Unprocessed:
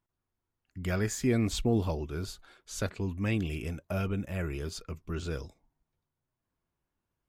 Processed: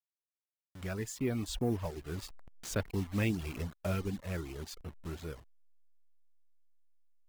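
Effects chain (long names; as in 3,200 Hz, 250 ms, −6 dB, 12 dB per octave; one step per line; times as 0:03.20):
hold until the input has moved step −39 dBFS
source passing by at 0:03.25, 9 m/s, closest 11 metres
reverb reduction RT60 0.68 s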